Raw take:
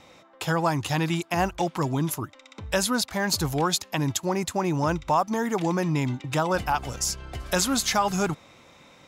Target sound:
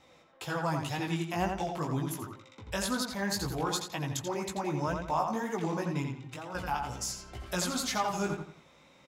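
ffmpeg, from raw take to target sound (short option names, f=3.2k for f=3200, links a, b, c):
-filter_complex "[0:a]asettb=1/sr,asplit=3[a][b][c];[a]atrim=end=6.024[d];[b]atrim=start=6.02:end=6.55,asetpts=PTS-STARTPTS,afade=t=in:d=0.004:c=qsin,afade=t=out:st=0.526:d=0.004:c=qsin,acompressor=threshold=-34dB:ratio=3[e];[c]atrim=start=6.546[f];[d][e]acrossfade=d=0.004:c1=hsin:c2=qsin[g];[g][f]acrossfade=d=0.004:c1=qsin:c2=hsin,flanger=delay=15:depth=5.2:speed=2,asplit=2[h][i];[i]adelay=86,lowpass=f=4.2k:p=1,volume=-4.5dB,asplit=2[j][k];[k]adelay=86,lowpass=f=4.2k:p=1,volume=0.34,asplit=2[l][m];[m]adelay=86,lowpass=f=4.2k:p=1,volume=0.34,asplit=2[n][o];[o]adelay=86,lowpass=f=4.2k:p=1,volume=0.34[p];[h][j][l][n][p]amix=inputs=5:normalize=0,volume=-5.5dB"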